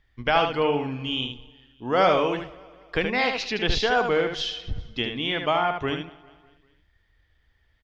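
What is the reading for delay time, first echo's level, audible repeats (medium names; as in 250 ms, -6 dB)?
75 ms, -6.0 dB, 6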